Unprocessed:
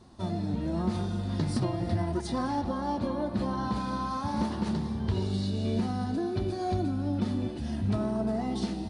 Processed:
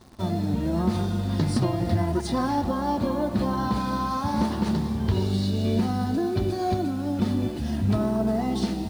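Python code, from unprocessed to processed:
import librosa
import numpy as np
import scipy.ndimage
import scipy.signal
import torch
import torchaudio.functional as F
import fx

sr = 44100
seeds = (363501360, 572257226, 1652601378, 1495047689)

p1 = fx.highpass(x, sr, hz=200.0, slope=6, at=(6.74, 7.2))
p2 = fx.quant_dither(p1, sr, seeds[0], bits=8, dither='none')
p3 = p1 + F.gain(torch.from_numpy(p2), -4.0).numpy()
y = F.gain(torch.from_numpy(p3), 1.0).numpy()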